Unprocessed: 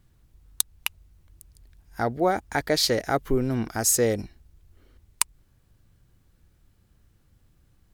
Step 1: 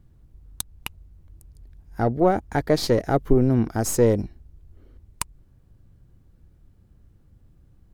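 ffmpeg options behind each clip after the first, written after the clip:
-af "aeval=exprs='0.708*(cos(1*acos(clip(val(0)/0.708,-1,1)))-cos(1*PI/2))+0.0224*(cos(6*acos(clip(val(0)/0.708,-1,1)))-cos(6*PI/2))+0.0398*(cos(8*acos(clip(val(0)/0.708,-1,1)))-cos(8*PI/2))':c=same,tiltshelf=f=970:g=7"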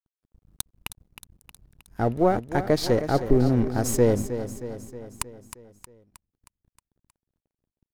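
-filter_complex "[0:a]aeval=exprs='sgn(val(0))*max(abs(val(0))-0.00531,0)':c=same,asplit=2[a][b];[b]aecho=0:1:314|628|942|1256|1570|1884:0.282|0.161|0.0916|0.0522|0.0298|0.017[c];[a][c]amix=inputs=2:normalize=0,volume=-1.5dB"

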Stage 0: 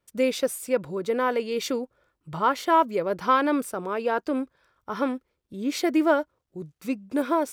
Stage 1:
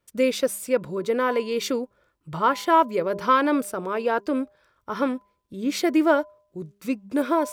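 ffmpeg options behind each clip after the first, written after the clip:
-af "bandreject=f=780:w=12,bandreject=f=201.7:t=h:w=4,bandreject=f=403.4:t=h:w=4,bandreject=f=605.1:t=h:w=4,bandreject=f=806.8:t=h:w=4,bandreject=f=1.0085k:t=h:w=4,volume=2dB"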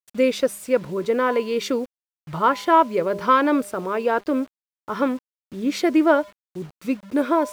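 -af "acrusher=bits=7:mix=0:aa=0.000001,highshelf=f=5.4k:g=-7.5,volume=2.5dB"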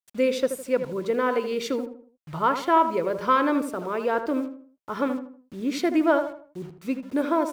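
-filter_complex "[0:a]asplit=2[a][b];[b]adelay=79,lowpass=f=1.5k:p=1,volume=-8dB,asplit=2[c][d];[d]adelay=79,lowpass=f=1.5k:p=1,volume=0.39,asplit=2[e][f];[f]adelay=79,lowpass=f=1.5k:p=1,volume=0.39,asplit=2[g][h];[h]adelay=79,lowpass=f=1.5k:p=1,volume=0.39[i];[a][c][e][g][i]amix=inputs=5:normalize=0,volume=-4dB"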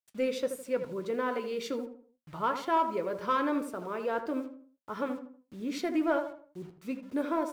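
-filter_complex "[0:a]asplit=2[a][b];[b]asoftclip=type=hard:threshold=-18dB,volume=-9dB[c];[a][c]amix=inputs=2:normalize=0,flanger=delay=9:depth=1.5:regen=-65:speed=1.6:shape=sinusoidal,volume=-5.5dB"

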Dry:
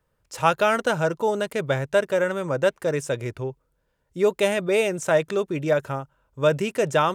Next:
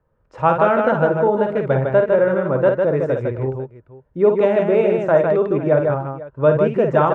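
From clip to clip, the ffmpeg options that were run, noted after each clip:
-filter_complex "[0:a]lowpass=1.2k,asplit=2[a][b];[b]aecho=0:1:53|154|498:0.501|0.631|0.133[c];[a][c]amix=inputs=2:normalize=0,volume=5dB"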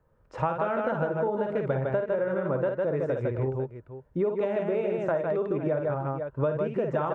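-af "acompressor=threshold=-24dB:ratio=10"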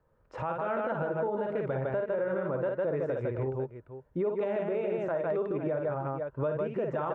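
-af "bass=f=250:g=-3,treble=f=4k:g=-5,alimiter=limit=-21dB:level=0:latency=1:release=38,volume=-1.5dB"

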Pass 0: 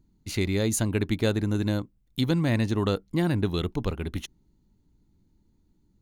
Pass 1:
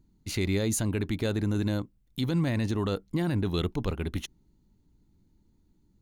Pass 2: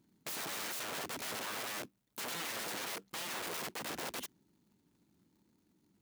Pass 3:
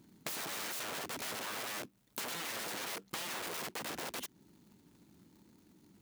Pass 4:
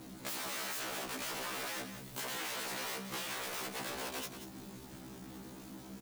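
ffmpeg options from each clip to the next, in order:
-af "alimiter=limit=-18.5dB:level=0:latency=1:release=20"
-af "aeval=exprs='(mod(53.1*val(0)+1,2)-1)/53.1':c=same,acrusher=bits=4:mode=log:mix=0:aa=0.000001,highpass=190,volume=-1dB"
-af "acompressor=threshold=-48dB:ratio=6,volume=9.5dB"
-af "aeval=exprs='val(0)+0.5*0.0075*sgn(val(0))':c=same,aecho=1:1:182:0.335,afftfilt=real='re*1.73*eq(mod(b,3),0)':imag='im*1.73*eq(mod(b,3),0)':win_size=2048:overlap=0.75"

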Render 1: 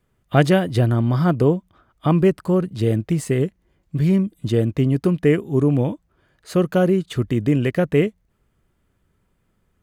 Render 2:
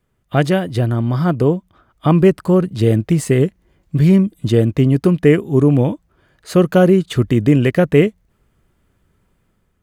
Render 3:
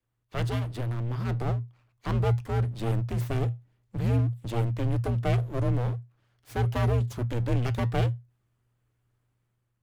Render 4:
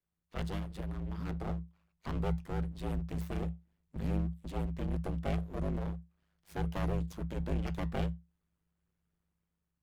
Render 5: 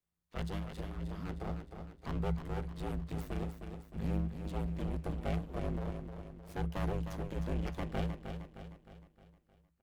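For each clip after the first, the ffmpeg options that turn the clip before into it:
-af "dynaudnorm=f=780:g=3:m=11.5dB"
-af "aeval=exprs='abs(val(0))':c=same,afreqshift=-120,flanger=delay=5.8:depth=1.3:regen=-81:speed=0.72:shape=triangular,volume=-8.5dB"
-af "aeval=exprs='val(0)*sin(2*PI*50*n/s)':c=same,volume=-5.5dB"
-af "aecho=1:1:309|618|927|1236|1545|1854:0.422|0.207|0.101|0.0496|0.0243|0.0119,volume=-1.5dB"

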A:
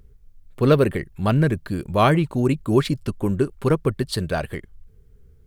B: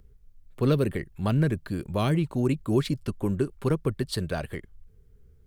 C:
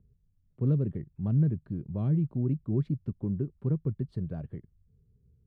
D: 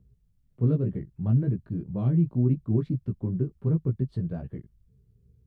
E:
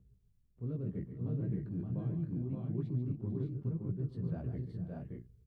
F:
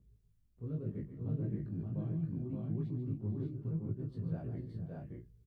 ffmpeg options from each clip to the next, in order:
-filter_complex "[0:a]acrossover=split=370|3000[a][b][c];[b]acompressor=threshold=-24dB:ratio=6[d];[a][d][c]amix=inputs=3:normalize=0,volume=-4.5dB"
-af "bandpass=f=140:t=q:w=1.3:csg=0"
-af "flanger=delay=15.5:depth=2.2:speed=2,volume=6.5dB"
-af "areverse,acompressor=threshold=-31dB:ratio=6,areverse,aecho=1:1:115|142|445|500|572|605:0.112|0.335|0.168|0.126|0.668|0.531,volume=-4.5dB"
-filter_complex "[0:a]asplit=2[a][b];[b]adelay=19,volume=-3dB[c];[a][c]amix=inputs=2:normalize=0,volume=-2.5dB"

